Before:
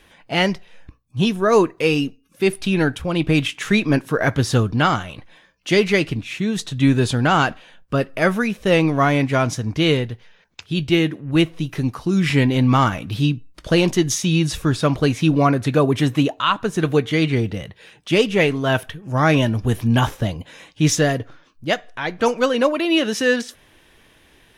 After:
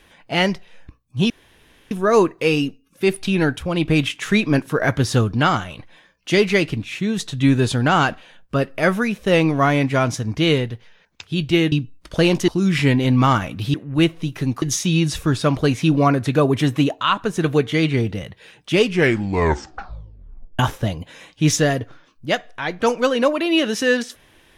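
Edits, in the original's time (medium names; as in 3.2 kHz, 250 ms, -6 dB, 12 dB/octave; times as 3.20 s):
1.30 s: insert room tone 0.61 s
11.11–11.99 s: swap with 13.25–14.01 s
18.17 s: tape stop 1.81 s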